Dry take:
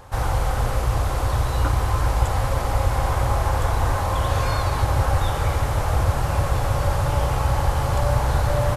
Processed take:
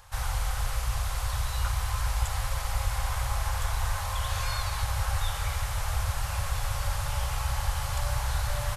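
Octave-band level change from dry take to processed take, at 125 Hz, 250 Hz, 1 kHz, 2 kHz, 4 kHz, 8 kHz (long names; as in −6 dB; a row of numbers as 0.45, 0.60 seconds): −10.0, −18.5, −10.0, −5.5, −2.0, −0.5 decibels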